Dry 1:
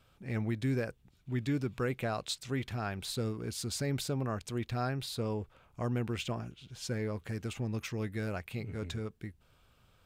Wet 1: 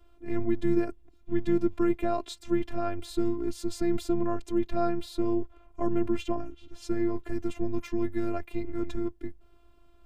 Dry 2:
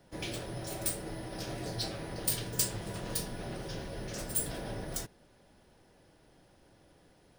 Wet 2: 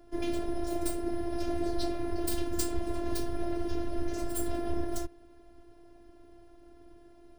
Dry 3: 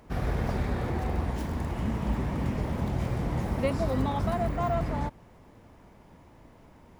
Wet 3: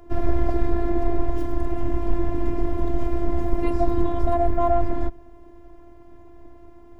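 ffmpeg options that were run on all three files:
-af "tiltshelf=f=1100:g=8.5,afreqshift=-38,afftfilt=real='hypot(re,im)*cos(PI*b)':imag='0':win_size=512:overlap=0.75,volume=2"

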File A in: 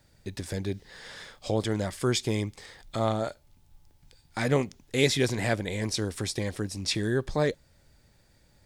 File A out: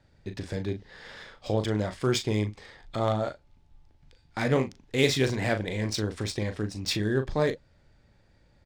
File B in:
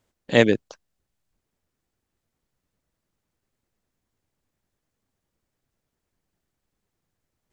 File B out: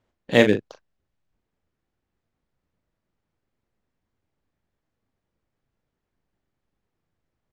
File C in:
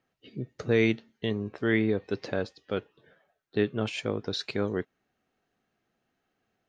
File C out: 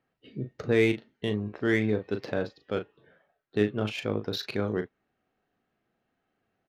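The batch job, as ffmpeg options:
-filter_complex "[0:a]asplit=2[s0][s1];[s1]adelay=38,volume=0.398[s2];[s0][s2]amix=inputs=2:normalize=0,adynamicsmooth=sensitivity=5.5:basefreq=4200"

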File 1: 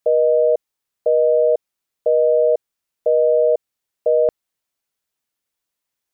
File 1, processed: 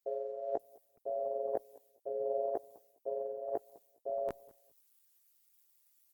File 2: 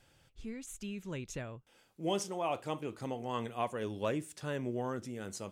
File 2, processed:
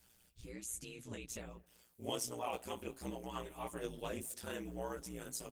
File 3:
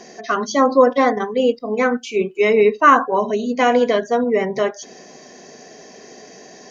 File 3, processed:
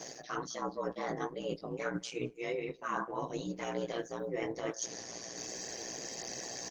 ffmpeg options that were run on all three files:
-filter_complex "[0:a]aemphasis=mode=production:type=75fm,areverse,acompressor=threshold=0.0398:ratio=20,areverse,flanger=delay=15:depth=3.2:speed=0.33,aeval=exprs='val(0)*sin(2*PI*59*n/s)':c=same,asplit=2[s0][s1];[s1]adelay=204,lowpass=f=1300:p=1,volume=0.0794,asplit=2[s2][s3];[s3]adelay=204,lowpass=f=1300:p=1,volume=0.24[s4];[s2][s4]amix=inputs=2:normalize=0[s5];[s0][s5]amix=inputs=2:normalize=0,volume=1.19" -ar 48000 -c:a libopus -b:a 16k

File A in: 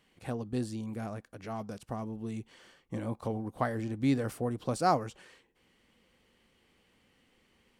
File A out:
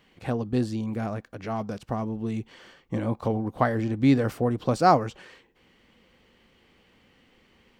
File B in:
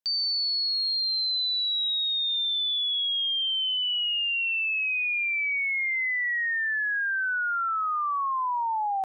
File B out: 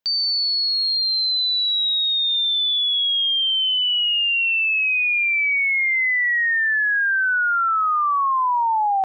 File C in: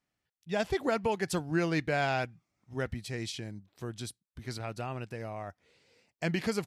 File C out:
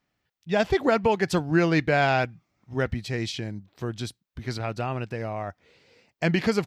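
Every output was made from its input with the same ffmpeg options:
-af "equalizer=f=10000:t=o:w=0.97:g=-11.5,volume=2.51"

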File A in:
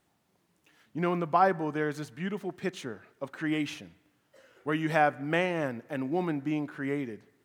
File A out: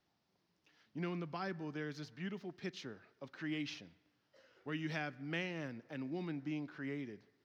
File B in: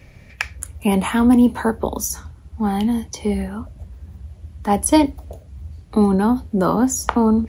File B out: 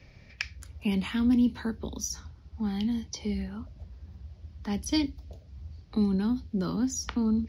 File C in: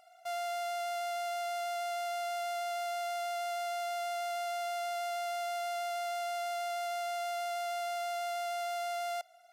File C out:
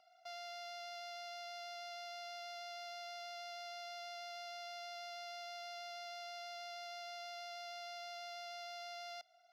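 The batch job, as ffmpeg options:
-filter_complex "[0:a]highshelf=f=6700:t=q:w=3:g=-10,acrossover=split=350|1700[s0][s1][s2];[s1]acompressor=threshold=0.00708:ratio=4[s3];[s0][s3][s2]amix=inputs=3:normalize=0,volume=0.376"

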